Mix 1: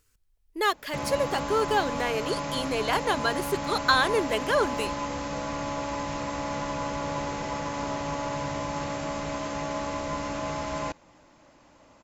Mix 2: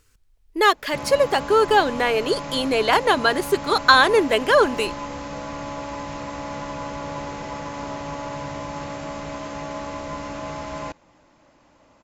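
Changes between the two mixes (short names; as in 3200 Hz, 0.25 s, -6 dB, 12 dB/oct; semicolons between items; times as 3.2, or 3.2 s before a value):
speech +8.5 dB; master: add high shelf 8400 Hz -7 dB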